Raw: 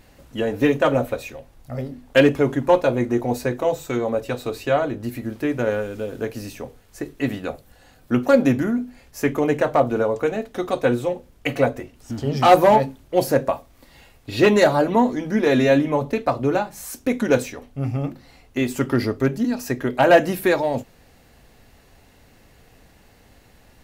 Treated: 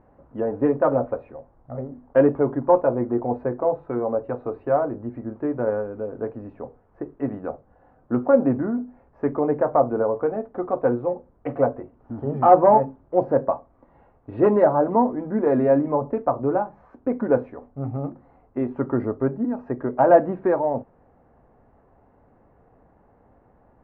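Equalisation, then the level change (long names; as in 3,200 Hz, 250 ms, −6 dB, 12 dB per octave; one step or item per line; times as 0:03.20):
low-pass filter 1,100 Hz 24 dB per octave
spectral tilt +2 dB per octave
+1.0 dB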